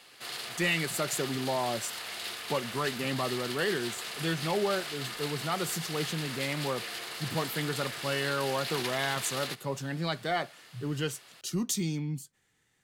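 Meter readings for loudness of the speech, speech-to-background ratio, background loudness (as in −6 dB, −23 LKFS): −33.0 LKFS, 3.5 dB, −36.5 LKFS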